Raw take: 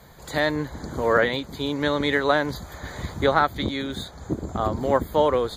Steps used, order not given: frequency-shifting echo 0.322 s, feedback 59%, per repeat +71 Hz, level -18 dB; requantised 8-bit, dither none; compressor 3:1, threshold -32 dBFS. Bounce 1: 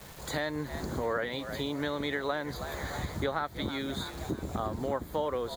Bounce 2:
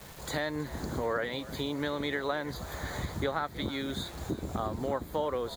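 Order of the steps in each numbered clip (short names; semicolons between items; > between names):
requantised > frequency-shifting echo > compressor; requantised > compressor > frequency-shifting echo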